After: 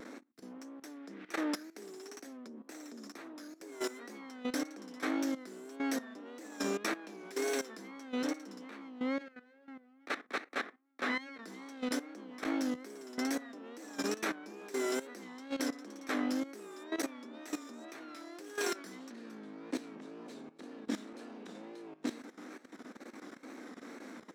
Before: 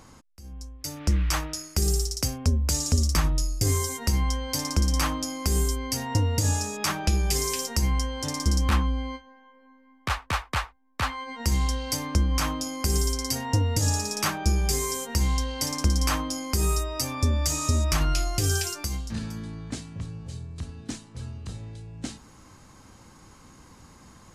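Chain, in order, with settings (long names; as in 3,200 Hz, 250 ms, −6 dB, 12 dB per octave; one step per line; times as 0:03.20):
lower of the sound and its delayed copy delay 0.52 ms
low-pass filter 1,200 Hz 6 dB per octave
reversed playback
downward compressor 12 to 1, threshold −36 dBFS, peak gain reduction 19 dB
reversed playback
Butterworth high-pass 240 Hz 48 dB per octave
on a send at −19 dB: convolution reverb RT60 0.40 s, pre-delay 4 ms
on the sum: output level in coarse steps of 15 dB
tape wow and flutter 87 cents
level +12 dB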